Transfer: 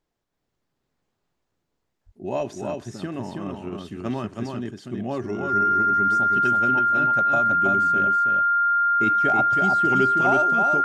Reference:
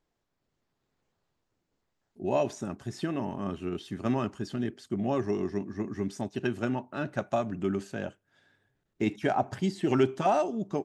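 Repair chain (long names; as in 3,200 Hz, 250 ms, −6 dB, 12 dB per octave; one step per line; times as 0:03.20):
notch filter 1,400 Hz, Q 30
0:02.05–0:02.17: high-pass filter 140 Hz 24 dB per octave
echo removal 323 ms −4 dB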